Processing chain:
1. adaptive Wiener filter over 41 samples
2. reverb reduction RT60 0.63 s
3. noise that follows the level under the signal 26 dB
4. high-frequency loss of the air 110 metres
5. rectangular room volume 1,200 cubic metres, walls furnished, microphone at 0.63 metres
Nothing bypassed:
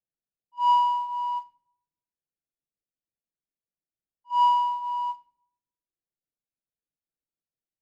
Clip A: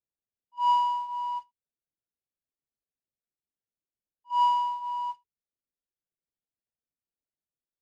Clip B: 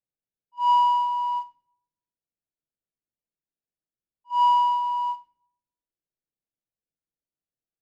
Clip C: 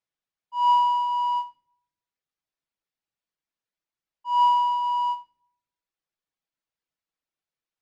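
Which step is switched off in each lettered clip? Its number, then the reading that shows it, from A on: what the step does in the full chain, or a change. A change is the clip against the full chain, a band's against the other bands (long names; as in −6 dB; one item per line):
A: 5, echo-to-direct ratio −12.0 dB to none audible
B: 2, change in crest factor −2.0 dB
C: 1, change in momentary loudness spread +4 LU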